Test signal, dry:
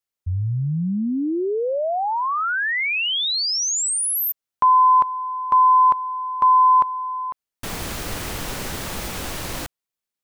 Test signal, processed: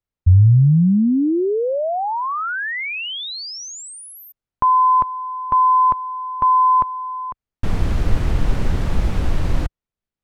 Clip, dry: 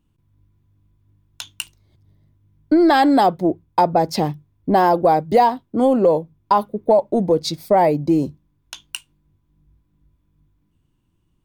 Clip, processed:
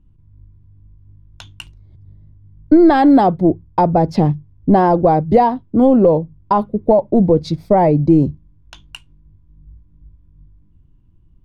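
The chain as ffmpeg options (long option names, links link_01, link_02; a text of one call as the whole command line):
ffmpeg -i in.wav -af "aemphasis=mode=reproduction:type=riaa" out.wav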